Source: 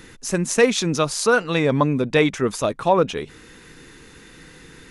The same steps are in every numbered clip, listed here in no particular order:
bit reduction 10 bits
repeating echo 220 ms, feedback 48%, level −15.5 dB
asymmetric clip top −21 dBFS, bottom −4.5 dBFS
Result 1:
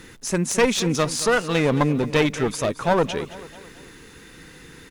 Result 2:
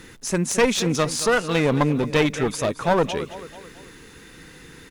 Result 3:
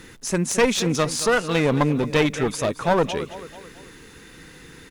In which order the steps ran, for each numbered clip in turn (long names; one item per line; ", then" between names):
bit reduction, then asymmetric clip, then repeating echo
bit reduction, then repeating echo, then asymmetric clip
repeating echo, then bit reduction, then asymmetric clip